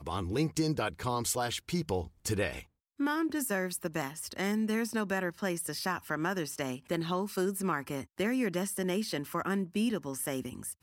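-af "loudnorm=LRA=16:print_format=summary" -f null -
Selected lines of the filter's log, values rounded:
Input Integrated:    -33.2 LUFS
Input True Peak:     -17.1 dBTP
Input LRA:             0.9 LU
Input Threshold:     -43.2 LUFS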